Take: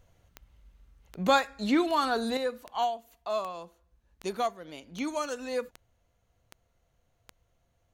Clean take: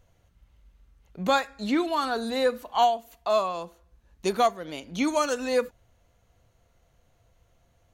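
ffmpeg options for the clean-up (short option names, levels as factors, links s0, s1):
-af "adeclick=t=4,asetnsamples=n=441:p=0,asendcmd='2.37 volume volume 7.5dB',volume=1"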